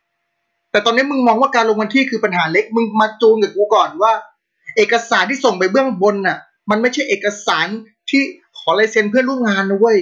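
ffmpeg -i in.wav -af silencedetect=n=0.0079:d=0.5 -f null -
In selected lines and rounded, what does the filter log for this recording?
silence_start: 0.00
silence_end: 0.74 | silence_duration: 0.74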